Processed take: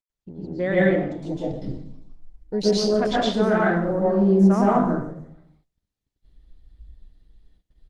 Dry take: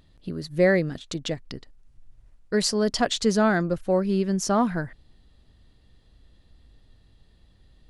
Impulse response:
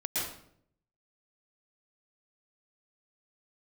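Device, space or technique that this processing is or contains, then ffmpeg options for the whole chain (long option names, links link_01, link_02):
speakerphone in a meeting room: -filter_complex "[0:a]asplit=5[link_01][link_02][link_03][link_04][link_05];[link_02]adelay=160,afreqshift=150,volume=-18dB[link_06];[link_03]adelay=320,afreqshift=300,volume=-24.2dB[link_07];[link_04]adelay=480,afreqshift=450,volume=-30.4dB[link_08];[link_05]adelay=640,afreqshift=600,volume=-36.6dB[link_09];[link_01][link_06][link_07][link_08][link_09]amix=inputs=5:normalize=0,afwtdn=0.0282[link_10];[1:a]atrim=start_sample=2205[link_11];[link_10][link_11]afir=irnorm=-1:irlink=0,dynaudnorm=framelen=170:gausssize=7:maxgain=10dB,agate=range=-23dB:threshold=-49dB:ratio=16:detection=peak,volume=-6dB" -ar 48000 -c:a libopus -b:a 24k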